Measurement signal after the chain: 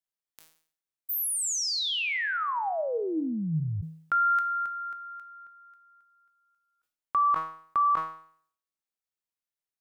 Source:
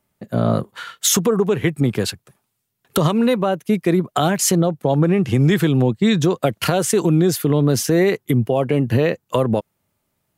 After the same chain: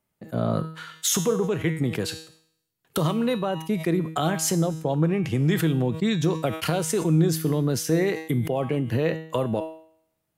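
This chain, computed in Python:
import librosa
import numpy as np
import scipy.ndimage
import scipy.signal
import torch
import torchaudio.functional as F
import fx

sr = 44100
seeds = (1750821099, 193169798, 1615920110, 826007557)

y = fx.comb_fb(x, sr, f0_hz=160.0, decay_s=0.72, harmonics='all', damping=0.0, mix_pct=70)
y = fx.sustainer(y, sr, db_per_s=110.0)
y = F.gain(torch.from_numpy(y), 2.0).numpy()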